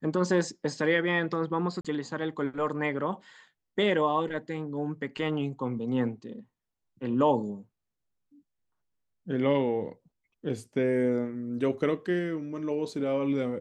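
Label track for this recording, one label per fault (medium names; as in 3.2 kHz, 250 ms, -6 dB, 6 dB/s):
1.810000	1.850000	dropout 36 ms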